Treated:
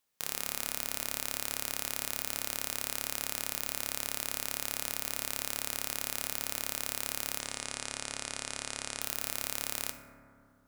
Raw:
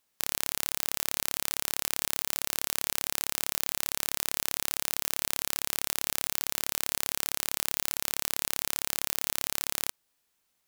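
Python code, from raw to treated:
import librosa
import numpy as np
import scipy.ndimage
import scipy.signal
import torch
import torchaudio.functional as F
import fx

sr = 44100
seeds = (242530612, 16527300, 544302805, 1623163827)

y = fx.steep_lowpass(x, sr, hz=10000.0, slope=72, at=(7.38, 9.01))
y = fx.rev_fdn(y, sr, rt60_s=2.4, lf_ratio=1.4, hf_ratio=0.25, size_ms=38.0, drr_db=4.0)
y = F.gain(torch.from_numpy(y), -4.5).numpy()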